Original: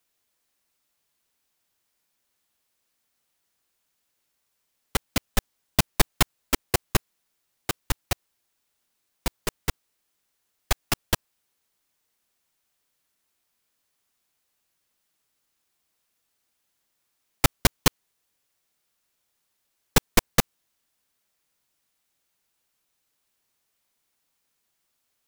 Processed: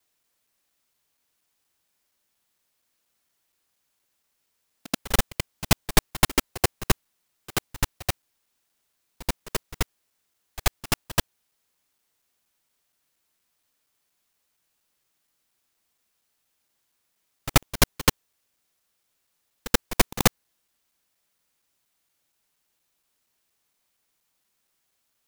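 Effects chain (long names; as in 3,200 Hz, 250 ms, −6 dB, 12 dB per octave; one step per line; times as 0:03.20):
reversed piece by piece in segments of 235 ms
echo ahead of the sound 82 ms −16 dB
level +1 dB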